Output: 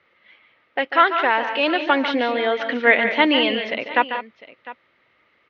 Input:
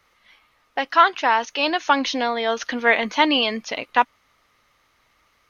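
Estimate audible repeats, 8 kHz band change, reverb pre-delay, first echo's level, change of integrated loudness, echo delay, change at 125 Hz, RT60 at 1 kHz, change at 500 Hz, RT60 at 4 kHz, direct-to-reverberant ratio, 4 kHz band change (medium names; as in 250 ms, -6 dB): 3, no reading, no reverb, -10.0 dB, +1.0 dB, 144 ms, no reading, no reverb, +3.5 dB, no reverb, no reverb, 0.0 dB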